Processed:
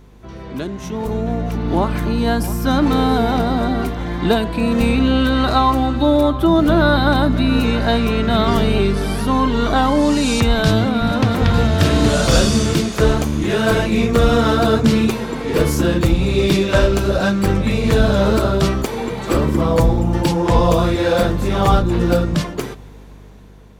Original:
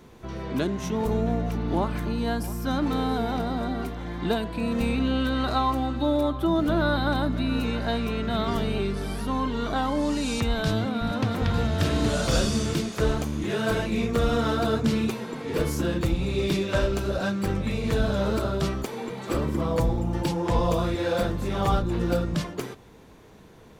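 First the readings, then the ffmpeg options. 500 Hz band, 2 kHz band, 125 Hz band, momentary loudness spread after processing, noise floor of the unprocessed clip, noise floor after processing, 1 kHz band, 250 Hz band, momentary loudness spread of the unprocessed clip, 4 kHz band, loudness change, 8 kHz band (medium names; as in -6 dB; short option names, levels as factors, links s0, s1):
+9.5 dB, +10.0 dB, +9.5 dB, 7 LU, -49 dBFS, -37 dBFS, +9.5 dB, +9.5 dB, 5 LU, +10.0 dB, +9.5 dB, +9.5 dB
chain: -af "aeval=exprs='val(0)+0.00631*(sin(2*PI*50*n/s)+sin(2*PI*2*50*n/s)/2+sin(2*PI*3*50*n/s)/3+sin(2*PI*4*50*n/s)/4+sin(2*PI*5*50*n/s)/5)':c=same,dynaudnorm=f=630:g=5:m=4.47"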